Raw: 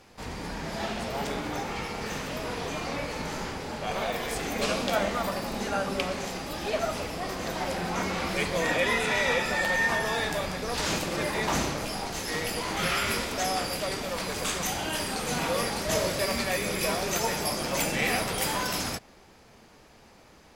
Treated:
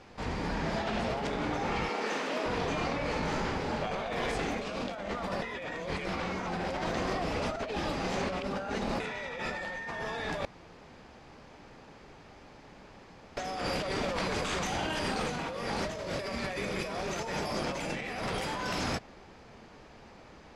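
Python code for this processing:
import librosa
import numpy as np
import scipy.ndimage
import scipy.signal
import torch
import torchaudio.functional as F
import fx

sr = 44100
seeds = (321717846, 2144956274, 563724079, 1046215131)

y = fx.highpass(x, sr, hz=250.0, slope=24, at=(1.89, 2.46))
y = fx.edit(y, sr, fx.reverse_span(start_s=5.42, length_s=3.58),
    fx.room_tone_fill(start_s=10.45, length_s=2.92), tone=tone)
y = scipy.signal.sosfilt(scipy.signal.butter(2, 7900.0, 'lowpass', fs=sr, output='sos'), y)
y = fx.high_shelf(y, sr, hz=5000.0, db=-10.5)
y = fx.over_compress(y, sr, threshold_db=-34.0, ratio=-1.0)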